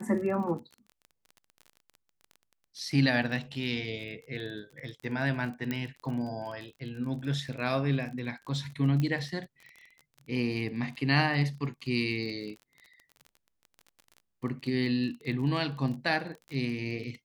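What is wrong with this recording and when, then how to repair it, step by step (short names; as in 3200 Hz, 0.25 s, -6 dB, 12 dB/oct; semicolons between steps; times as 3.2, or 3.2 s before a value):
crackle 27/s -38 dBFS
5.71 pop -18 dBFS
9 pop -19 dBFS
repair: de-click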